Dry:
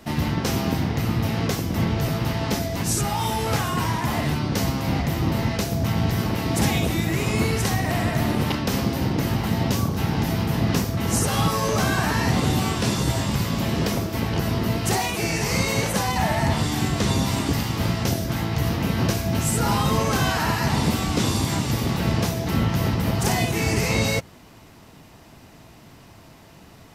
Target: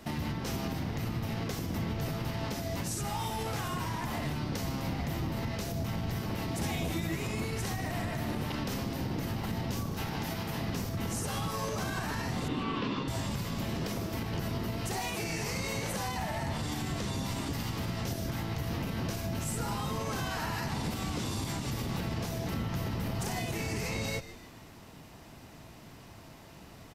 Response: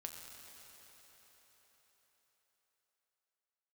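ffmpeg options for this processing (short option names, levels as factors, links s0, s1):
-filter_complex "[0:a]asettb=1/sr,asplit=3[s0][s1][s2];[s0]atrim=end=9.944[s3];[s1]atrim=start=9.94:end=10.68,asetpts=PTS-STARTPTS,afade=t=in:d=0.004:c=qsin,afade=t=out:st=0.736:d=0.004:c=qsin,lowshelf=f=400:g=-7[s4];[s2]atrim=start=10.676[s5];[s3][s4]acrossfade=d=0.004:c1=hsin:c2=qsin[s6];[s6][s5]acrossfade=d=0.004:c1=qsin:c2=hsin,alimiter=limit=0.0794:level=0:latency=1:release=168,asettb=1/sr,asplit=3[s7][s8][s9];[s7]atrim=end=6.604[s10];[s8]atrim=start=6.6:end=7.18,asetpts=PTS-STARTPTS,afade=t=in:d=0.004:c=qsin,afade=t=out:st=0.576:d=0.004:c=qsin,asplit=2[s11][s12];[s12]adelay=12,volume=0.501[s13];[s11][s13]amix=inputs=2:normalize=0,atrim=end_sample=25578[s14];[s9]atrim=start=7.176[s15];[s10][s14]acrossfade=d=0.004:c1=hsin:c2=qsin[s16];[s16][s15]acrossfade=d=0.004:c1=qsin:c2=hsin,asettb=1/sr,asplit=3[s17][s18][s19];[s17]atrim=end=12.484[s20];[s18]atrim=start=12.48:end=13.08,asetpts=PTS-STARTPTS,afade=t=in:d=0.004:c=qsin,afade=t=out:st=0.596:d=0.004:c=qsin,highpass=150,equalizer=f=270:t=q:w=4:g=9,equalizer=f=460:t=q:w=4:g=4,equalizer=f=710:t=q:w=4:g=-6,equalizer=f=1100:t=q:w=4:g=8,equalizer=f=2800:t=q:w=4:g=4,lowpass=f=4000:w=0.5412,lowpass=f=4000:w=1.3066[s21];[s19]atrim=start=13.076[s22];[s20][s21]acrossfade=d=0.004:c1=hsin:c2=qsin[s23];[s23][s22]acrossfade=d=0.004:c1=qsin:c2=hsin,asplit=5[s24][s25][s26][s27][s28];[s25]adelay=151,afreqshift=-99,volume=0.188[s29];[s26]adelay=302,afreqshift=-198,volume=0.0871[s30];[s27]adelay=453,afreqshift=-297,volume=0.0398[s31];[s28]adelay=604,afreqshift=-396,volume=0.0184[s32];[s24][s29][s30][s31][s32]amix=inputs=5:normalize=0,volume=0.668"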